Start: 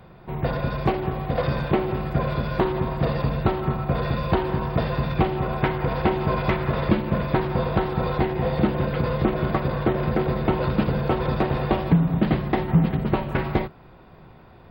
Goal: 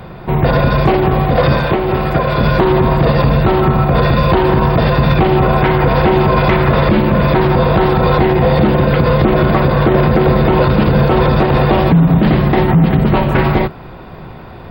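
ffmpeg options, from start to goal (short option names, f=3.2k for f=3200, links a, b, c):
-filter_complex "[0:a]asettb=1/sr,asplit=3[a][b][c];[a]atrim=end=1.544[d];[b]atrim=start=1.54:end=2.41,asetpts=PTS-STARTPTS,afade=t=in:d=0.004:c=qsin,afade=t=out:st=0.866:d=0.004:c=qsin,acrossover=split=110|340[e][f][g];[e]acompressor=threshold=-37dB:ratio=4[h];[f]acompressor=threshold=-36dB:ratio=4[i];[g]acompressor=threshold=-29dB:ratio=4[j];[h][i][j]amix=inputs=3:normalize=0[k];[c]atrim=start=2.406[l];[d][k]acrossfade=d=0.004:c1=hsin:c2=qsin[m];[m][l]acrossfade=d=0.004:c1=qsin:c2=hsin,alimiter=level_in=17.5dB:limit=-1dB:release=50:level=0:latency=1,volume=-1.5dB"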